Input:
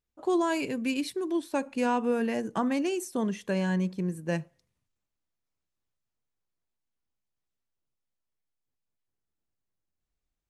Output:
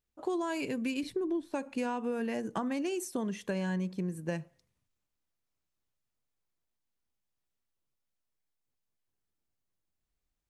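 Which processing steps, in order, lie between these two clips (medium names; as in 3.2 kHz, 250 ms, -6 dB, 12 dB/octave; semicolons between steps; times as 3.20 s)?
1.03–1.53 s: tilt EQ -3 dB/octave; compression, threshold -30 dBFS, peak gain reduction 10.5 dB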